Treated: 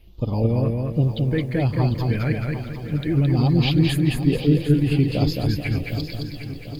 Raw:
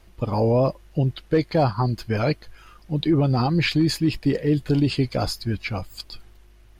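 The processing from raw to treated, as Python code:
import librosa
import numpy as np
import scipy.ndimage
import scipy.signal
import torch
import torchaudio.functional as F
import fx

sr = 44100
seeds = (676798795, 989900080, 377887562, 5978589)

y = fx.phaser_stages(x, sr, stages=4, low_hz=780.0, high_hz=1800.0, hz=1.2, feedback_pct=45)
y = fx.echo_feedback(y, sr, ms=217, feedback_pct=40, wet_db=-3.5)
y = fx.echo_crushed(y, sr, ms=751, feedback_pct=55, bits=8, wet_db=-11.5)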